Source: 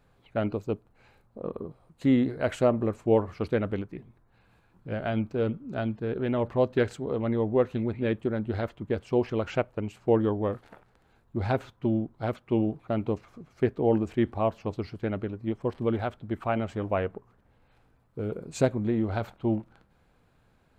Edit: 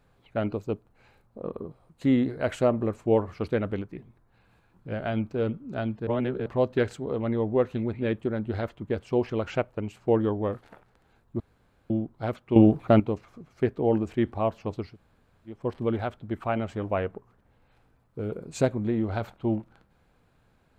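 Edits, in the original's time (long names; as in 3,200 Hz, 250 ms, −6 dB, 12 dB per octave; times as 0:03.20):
0:06.07–0:06.46: reverse
0:11.40–0:11.90: fill with room tone
0:12.56–0:13.00: clip gain +10 dB
0:14.90–0:15.56: fill with room tone, crossfade 0.24 s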